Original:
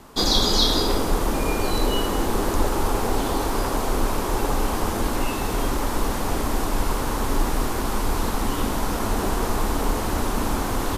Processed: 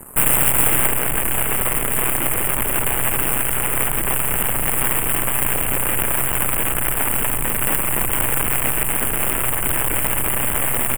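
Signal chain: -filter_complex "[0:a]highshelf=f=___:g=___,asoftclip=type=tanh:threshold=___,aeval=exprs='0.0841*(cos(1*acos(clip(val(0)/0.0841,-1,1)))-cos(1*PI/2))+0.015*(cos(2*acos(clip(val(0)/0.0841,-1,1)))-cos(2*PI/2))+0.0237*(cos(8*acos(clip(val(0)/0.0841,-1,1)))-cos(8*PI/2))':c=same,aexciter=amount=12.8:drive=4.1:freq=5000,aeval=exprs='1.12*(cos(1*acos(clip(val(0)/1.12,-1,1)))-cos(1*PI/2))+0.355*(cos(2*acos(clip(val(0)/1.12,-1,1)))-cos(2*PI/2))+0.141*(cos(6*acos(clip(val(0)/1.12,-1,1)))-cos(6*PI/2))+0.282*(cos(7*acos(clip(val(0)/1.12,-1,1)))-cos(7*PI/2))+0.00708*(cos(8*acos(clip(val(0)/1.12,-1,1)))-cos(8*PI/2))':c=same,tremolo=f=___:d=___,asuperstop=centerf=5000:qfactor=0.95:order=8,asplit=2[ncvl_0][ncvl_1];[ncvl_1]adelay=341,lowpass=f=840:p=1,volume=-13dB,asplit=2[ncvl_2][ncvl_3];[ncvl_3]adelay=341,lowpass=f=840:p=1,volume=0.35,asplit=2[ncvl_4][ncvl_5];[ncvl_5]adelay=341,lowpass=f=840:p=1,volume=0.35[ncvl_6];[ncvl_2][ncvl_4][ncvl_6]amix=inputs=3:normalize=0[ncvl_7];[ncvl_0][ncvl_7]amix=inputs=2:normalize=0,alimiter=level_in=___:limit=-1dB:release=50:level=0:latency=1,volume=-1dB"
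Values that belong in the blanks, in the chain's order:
2400, -6.5, -21.5dB, 130, 0.621, 5.5dB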